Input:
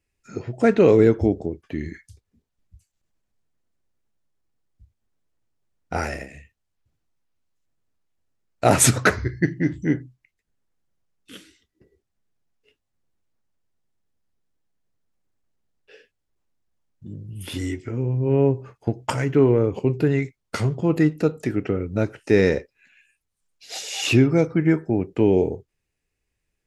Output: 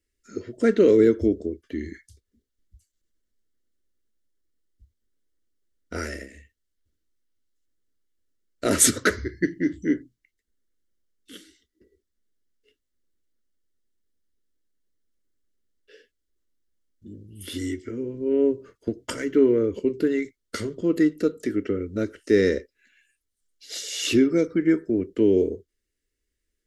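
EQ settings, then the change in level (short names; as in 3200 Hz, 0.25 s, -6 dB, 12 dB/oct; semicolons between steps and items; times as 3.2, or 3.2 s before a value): fixed phaser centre 330 Hz, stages 4; notch 1100 Hz, Q 13; notch 2500 Hz, Q 5.2; 0.0 dB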